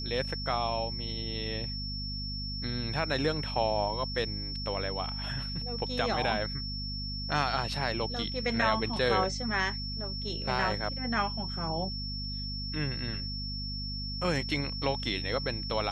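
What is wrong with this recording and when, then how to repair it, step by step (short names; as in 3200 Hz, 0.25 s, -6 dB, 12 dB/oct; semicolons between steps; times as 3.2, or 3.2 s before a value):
hum 50 Hz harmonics 5 -38 dBFS
tone 5400 Hz -37 dBFS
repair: de-hum 50 Hz, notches 5; notch 5400 Hz, Q 30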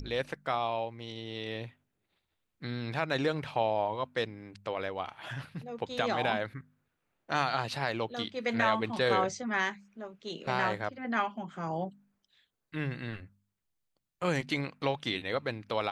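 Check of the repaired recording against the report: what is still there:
none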